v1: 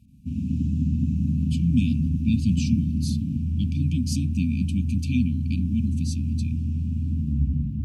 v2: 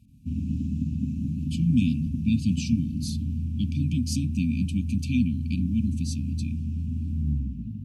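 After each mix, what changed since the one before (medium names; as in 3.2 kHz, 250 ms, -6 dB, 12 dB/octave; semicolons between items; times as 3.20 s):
reverb: off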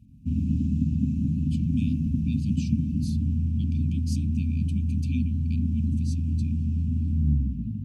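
speech -8.5 dB; background: add bass shelf 460 Hz +4 dB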